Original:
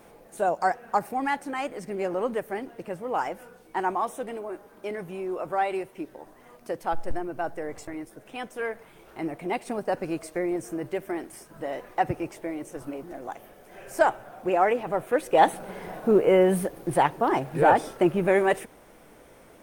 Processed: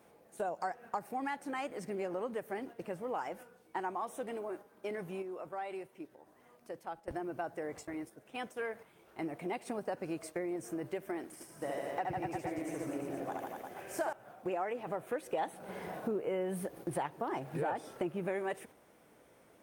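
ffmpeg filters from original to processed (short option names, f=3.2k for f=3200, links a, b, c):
-filter_complex "[0:a]asettb=1/sr,asplit=3[a][b][c];[a]atrim=end=5.224[d];[b]atrim=start=5.22:end=7.08,asetpts=PTS-STARTPTS,afade=t=in:d=0.004:c=qsin,afade=t=out:st=1.856:d=0.004:c=qsin,acompressor=threshold=-48dB:ratio=1.5:attack=3.2:release=140:knee=1:detection=peak[e];[c]atrim=start=7.076[f];[d][e]acrossfade=d=0.004:c1=hsin:c2=qsin[g];[g][f]acrossfade=d=0.004:c1=qsin:c2=hsin,asettb=1/sr,asplit=3[h][i][j];[h]atrim=end=11.254[k];[i]atrim=start=11.25:end=14.13,asetpts=PTS-STARTPTS,afade=t=in:d=0.004:c=qsin,afade=t=out:st=2.876:d=0.004:c=qsin,aecho=1:1:70|150.5|243.1|349.5|472:0.794|0.631|0.501|0.398|0.316,atrim=end_sample=127008[l];[j]atrim=start=14.126[m];[k][l]acrossfade=d=0.004:c1=hsin:c2=qsin[n];[n][m]acrossfade=d=0.004:c1=qsin:c2=hsin,highpass=77,agate=range=-6dB:threshold=-42dB:ratio=16:detection=peak,acompressor=threshold=-30dB:ratio=4,volume=-4.5dB"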